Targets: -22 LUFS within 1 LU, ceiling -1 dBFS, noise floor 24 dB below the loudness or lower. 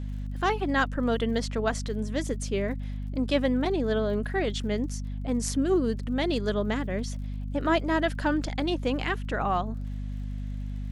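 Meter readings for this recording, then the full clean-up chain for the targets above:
tick rate 46 per s; hum 50 Hz; highest harmonic 250 Hz; hum level -30 dBFS; loudness -28.5 LUFS; peak level -11.0 dBFS; loudness target -22.0 LUFS
-> de-click; de-hum 50 Hz, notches 5; trim +6.5 dB

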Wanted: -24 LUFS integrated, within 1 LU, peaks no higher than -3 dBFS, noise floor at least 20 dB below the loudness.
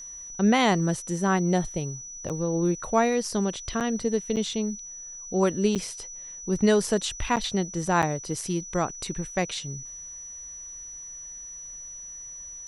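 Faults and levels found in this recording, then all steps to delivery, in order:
dropouts 6; longest dropout 7.6 ms; steady tone 5.9 kHz; tone level -38 dBFS; loudness -26.5 LUFS; peak level -8.5 dBFS; loudness target -24.0 LUFS
-> interpolate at 2.29/3.80/4.36/5.75/7.36/8.02 s, 7.6 ms; band-stop 5.9 kHz, Q 30; trim +2.5 dB

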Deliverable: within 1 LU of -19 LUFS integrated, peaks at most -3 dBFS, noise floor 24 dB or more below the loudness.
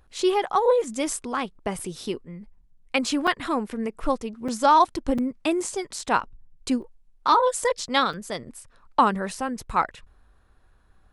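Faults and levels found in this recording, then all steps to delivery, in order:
dropouts 6; longest dropout 4.8 ms; loudness -25.0 LUFS; peak level -6.5 dBFS; loudness target -19.0 LUFS
-> interpolate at 1.79/3.27/4.48/5.18/6.82/8.13 s, 4.8 ms; trim +6 dB; peak limiter -3 dBFS

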